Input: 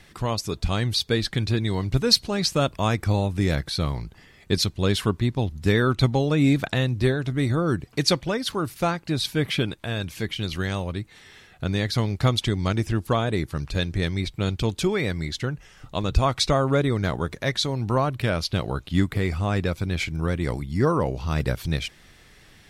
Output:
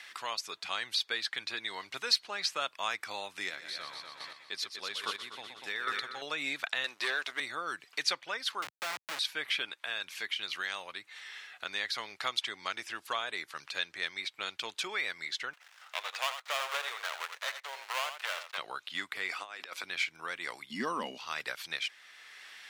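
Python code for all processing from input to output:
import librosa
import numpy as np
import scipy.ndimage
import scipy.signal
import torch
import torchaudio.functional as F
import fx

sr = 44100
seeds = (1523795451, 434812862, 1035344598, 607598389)

y = fx.chain(x, sr, fx.echo_heads(ms=122, heads='first and second', feedback_pct=46, wet_db=-9),
    fx.chopper(hz=1.2, depth_pct=60, duty_pct=15), at=(3.37, 6.22))
y = fx.chain(y, sr, fx.highpass(hz=380.0, slope=12),
    fx.leveller(passes=2), at=(6.84, 7.4))
y = fx.chain(y, sr, fx.hum_notches(base_hz=60, count=5),
    fx.schmitt(flips_db=-28.0),
    fx.band_squash(depth_pct=40), at=(8.62, 9.19))
y = fx.chain(y, sr, fx.dead_time(dead_ms=0.24),
    fx.cheby2_highpass(hz=200.0, order=4, stop_db=50),
    fx.echo_single(ms=84, db=-10.0), at=(15.53, 18.58))
y = fx.chain(y, sr, fx.highpass(hz=240.0, slope=24),
    fx.over_compress(threshold_db=-33.0, ratio=-0.5), at=(19.29, 19.83))
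y = fx.chain(y, sr, fx.peak_eq(hz=220.0, db=7.0, octaves=0.6),
    fx.notch(hz=1400.0, q=9.3),
    fx.small_body(hz=(230.0, 2900.0), ring_ms=35, db=16), at=(20.7, 21.18))
y = scipy.signal.sosfilt(scipy.signal.butter(2, 1400.0, 'highpass', fs=sr, output='sos'), y)
y = fx.high_shelf(y, sr, hz=5600.0, db=-11.5)
y = fx.band_squash(y, sr, depth_pct=40)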